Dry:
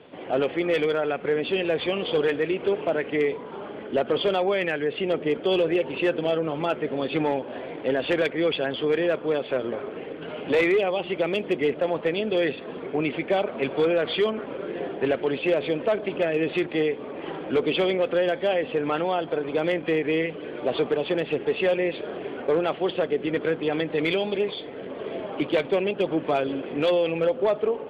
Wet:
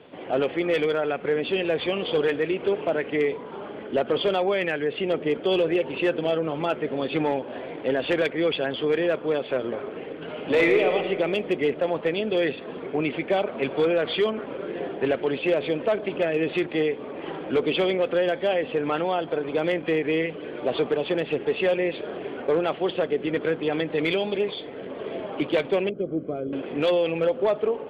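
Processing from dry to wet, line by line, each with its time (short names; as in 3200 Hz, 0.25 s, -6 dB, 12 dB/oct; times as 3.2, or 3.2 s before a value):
10.37–10.89 reverb throw, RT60 1.9 s, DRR 3 dB
25.89–26.53 running mean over 49 samples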